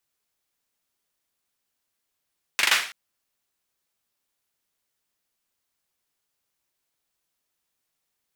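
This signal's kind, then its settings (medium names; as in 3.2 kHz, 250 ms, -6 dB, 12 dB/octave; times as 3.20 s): hand clap length 0.33 s, apart 41 ms, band 2.1 kHz, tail 0.44 s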